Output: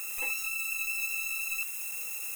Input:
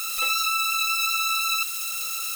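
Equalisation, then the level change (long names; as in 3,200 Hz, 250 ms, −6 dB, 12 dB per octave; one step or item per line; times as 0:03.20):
parametric band 3,400 Hz −7 dB 0.68 octaves
high-shelf EQ 4,700 Hz −5.5 dB
phaser with its sweep stopped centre 890 Hz, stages 8
0.0 dB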